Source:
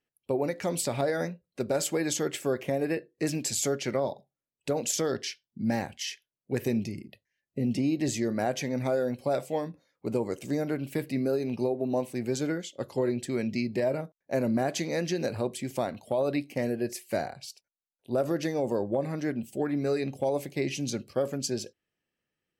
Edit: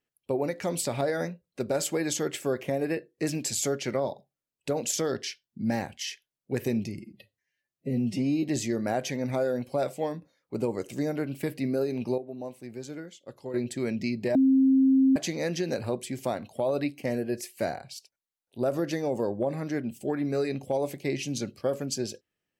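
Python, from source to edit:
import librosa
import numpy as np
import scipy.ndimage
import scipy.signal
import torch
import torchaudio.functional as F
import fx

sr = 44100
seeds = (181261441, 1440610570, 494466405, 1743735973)

y = fx.edit(x, sr, fx.stretch_span(start_s=6.99, length_s=0.96, factor=1.5),
    fx.clip_gain(start_s=11.7, length_s=1.36, db=-9.5),
    fx.bleep(start_s=13.87, length_s=0.81, hz=266.0, db=-17.0), tone=tone)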